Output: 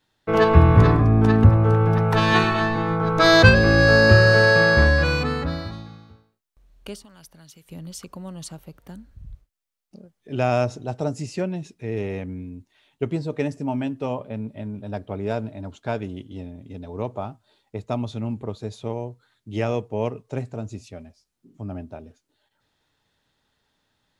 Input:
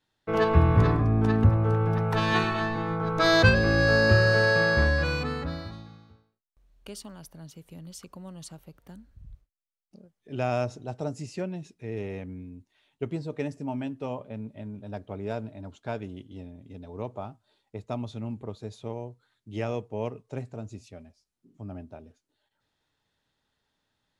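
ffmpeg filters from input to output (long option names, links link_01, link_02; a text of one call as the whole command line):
ffmpeg -i in.wav -filter_complex "[0:a]asettb=1/sr,asplit=3[link_01][link_02][link_03];[link_01]atrim=end=6.954[link_04];[link_02]atrim=start=6.95:end=7.7,asetpts=PTS-STARTPTS,afade=type=in:duration=0.004:curve=qsin,afade=type=out:start_time=0.746:duration=0.004:curve=qsin,acrossover=split=1300|7800[link_05][link_06][link_07];[link_05]acompressor=threshold=-57dB:ratio=4[link_08];[link_06]acompressor=threshold=-55dB:ratio=4[link_09];[link_07]acompressor=threshold=-58dB:ratio=4[link_10];[link_08][link_09][link_10]amix=inputs=3:normalize=0[link_11];[link_03]atrim=start=7.696[link_12];[link_04][link_11]acrossfade=duration=0.004:curve1=hsin:curve2=qsin[link_13];[link_13][link_12]acrossfade=duration=0.004:curve1=qsin:curve2=hsin,asettb=1/sr,asplit=3[link_14][link_15][link_16];[link_14]atrim=end=14.134[link_17];[link_15]atrim=start=14.13:end=15.19,asetpts=PTS-STARTPTS,afade=type=in:duration=0.004:curve=qsin,afade=type=out:start_time=1.056:duration=0.004:curve=qsin,bandreject=frequency=6500:width=11[link_18];[link_16]atrim=start=15.186[link_19];[link_17][link_18]acrossfade=duration=0.004:curve1=hsin:curve2=qsin[link_20];[link_20][link_19]acrossfade=duration=0.004:curve1=qsin:curve2=hsin,volume=6.5dB" out.wav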